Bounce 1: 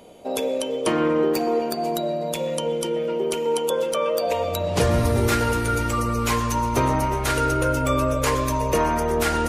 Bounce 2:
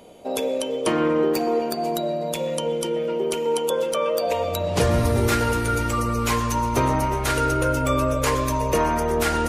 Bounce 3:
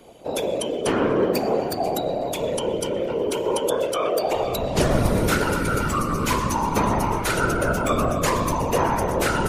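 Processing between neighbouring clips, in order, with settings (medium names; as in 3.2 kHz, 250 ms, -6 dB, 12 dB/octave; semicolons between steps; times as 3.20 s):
no audible change
whisper effect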